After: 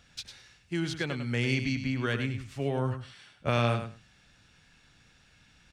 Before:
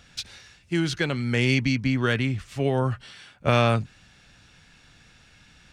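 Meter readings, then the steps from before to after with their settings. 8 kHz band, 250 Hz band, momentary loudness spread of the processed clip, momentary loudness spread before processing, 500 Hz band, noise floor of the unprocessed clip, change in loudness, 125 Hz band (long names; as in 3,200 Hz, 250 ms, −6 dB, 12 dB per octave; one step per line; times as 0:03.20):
−6.5 dB, −6.5 dB, 15 LU, 15 LU, −6.5 dB, −56 dBFS, −6.5 dB, −6.0 dB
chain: repeating echo 101 ms, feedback 15%, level −9 dB
level −7 dB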